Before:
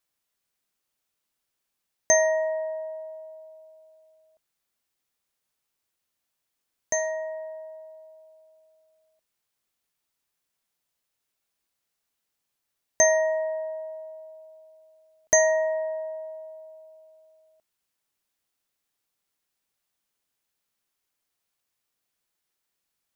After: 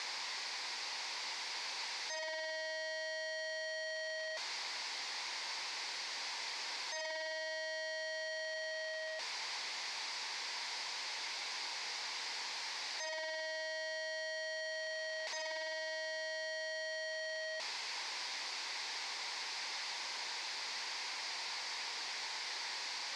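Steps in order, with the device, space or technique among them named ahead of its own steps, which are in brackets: home computer beeper (infinite clipping; speaker cabinet 630–5500 Hz, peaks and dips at 630 Hz -5 dB, 930 Hz +7 dB, 1300 Hz -7 dB, 2100 Hz +5 dB, 3000 Hz -4 dB, 4700 Hz +6 dB); gain -4 dB

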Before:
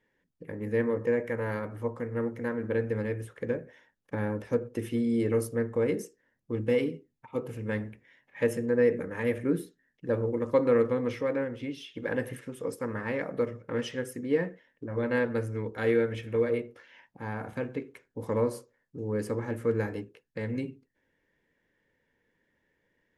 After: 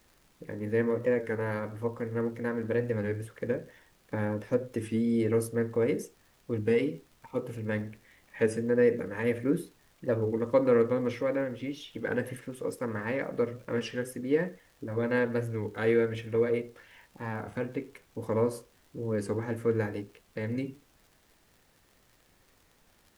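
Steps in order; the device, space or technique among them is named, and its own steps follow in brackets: warped LP (record warp 33 1/3 rpm, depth 100 cents; crackle; pink noise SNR 34 dB)

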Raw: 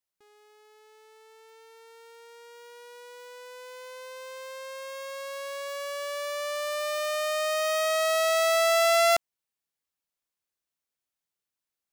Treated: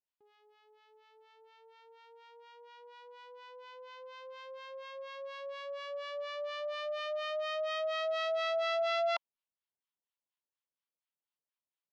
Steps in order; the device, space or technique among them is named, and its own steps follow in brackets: guitar amplifier with harmonic tremolo (harmonic tremolo 4.2 Hz, depth 100%, crossover 820 Hz; soft clip -20 dBFS, distortion -18 dB; speaker cabinet 110–4400 Hz, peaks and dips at 570 Hz +4 dB, 960 Hz +8 dB, 3100 Hz +5 dB); gain -5 dB

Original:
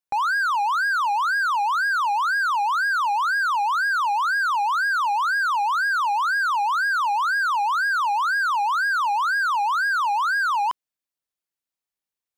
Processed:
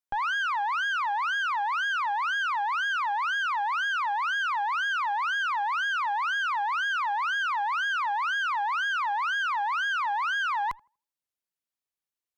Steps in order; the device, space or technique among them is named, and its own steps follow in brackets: rockabilly slapback (tube stage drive 25 dB, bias 0.7; tape echo 83 ms, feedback 30%, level -22 dB, low-pass 1100 Hz)

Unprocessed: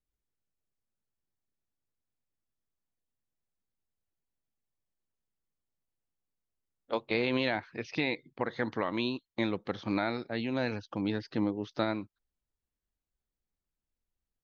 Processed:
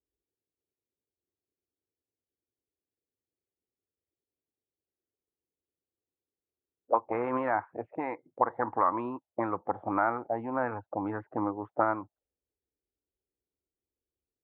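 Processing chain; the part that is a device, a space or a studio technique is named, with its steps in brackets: 7.86–8.41 low shelf 290 Hz -5.5 dB; envelope filter bass rig (envelope low-pass 410–1200 Hz up, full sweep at -27.5 dBFS; speaker cabinet 76–2200 Hz, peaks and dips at 140 Hz -9 dB, 210 Hz -9 dB, 410 Hz -4 dB, 820 Hz +5 dB)

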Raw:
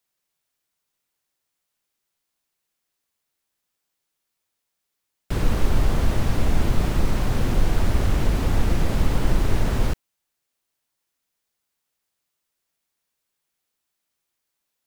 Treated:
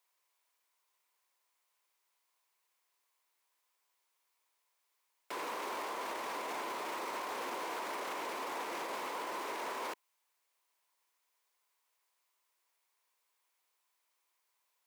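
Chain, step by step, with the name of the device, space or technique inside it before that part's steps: laptop speaker (HPF 380 Hz 24 dB/oct; bell 1000 Hz +12 dB 0.36 oct; bell 2200 Hz +4.5 dB 0.45 oct; limiter -30 dBFS, peak gain reduction 13 dB); gain -1.5 dB

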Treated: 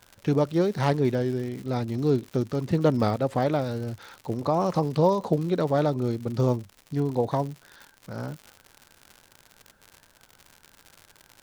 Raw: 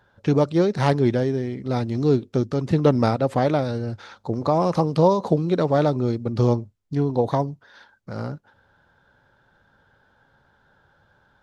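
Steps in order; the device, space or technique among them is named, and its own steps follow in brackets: warped LP (record warp 33 1/3 rpm, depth 100 cents; crackle 120/s -30 dBFS; pink noise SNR 40 dB); gain -4 dB

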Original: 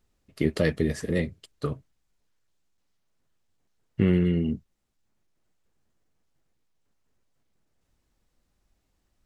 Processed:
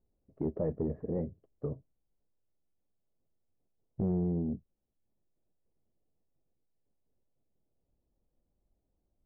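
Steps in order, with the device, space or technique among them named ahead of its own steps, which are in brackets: overdriven synthesiser ladder filter (soft clip -19.5 dBFS, distortion -12 dB; ladder low-pass 810 Hz, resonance 25%)

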